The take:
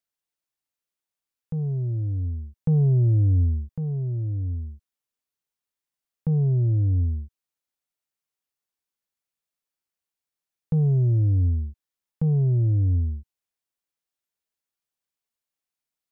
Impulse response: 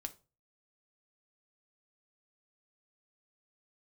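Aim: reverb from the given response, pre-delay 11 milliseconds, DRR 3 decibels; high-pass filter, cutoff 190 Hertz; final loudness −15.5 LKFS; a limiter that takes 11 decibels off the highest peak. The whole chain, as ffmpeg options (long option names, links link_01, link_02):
-filter_complex "[0:a]highpass=190,alimiter=level_in=5.5dB:limit=-24dB:level=0:latency=1,volume=-5.5dB,asplit=2[link_01][link_02];[1:a]atrim=start_sample=2205,adelay=11[link_03];[link_02][link_03]afir=irnorm=-1:irlink=0,volume=0dB[link_04];[link_01][link_04]amix=inputs=2:normalize=0,volume=20dB"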